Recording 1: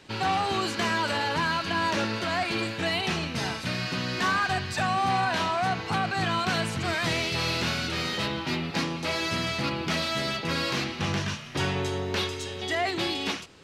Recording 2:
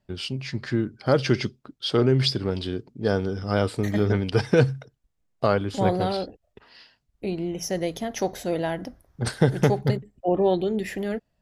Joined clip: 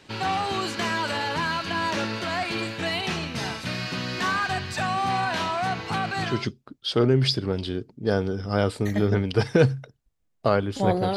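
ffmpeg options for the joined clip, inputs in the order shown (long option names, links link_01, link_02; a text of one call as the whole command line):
ffmpeg -i cue0.wav -i cue1.wav -filter_complex "[0:a]apad=whole_dur=11.16,atrim=end=11.16,atrim=end=6.48,asetpts=PTS-STARTPTS[link_01];[1:a]atrim=start=1.18:end=6.14,asetpts=PTS-STARTPTS[link_02];[link_01][link_02]acrossfade=duration=0.28:curve1=tri:curve2=tri" out.wav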